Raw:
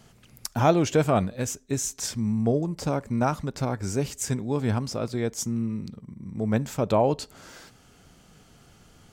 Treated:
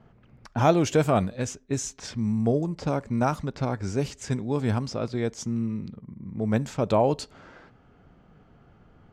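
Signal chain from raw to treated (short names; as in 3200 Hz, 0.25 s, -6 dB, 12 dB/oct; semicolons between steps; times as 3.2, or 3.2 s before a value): low-pass opened by the level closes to 1400 Hz, open at -20 dBFS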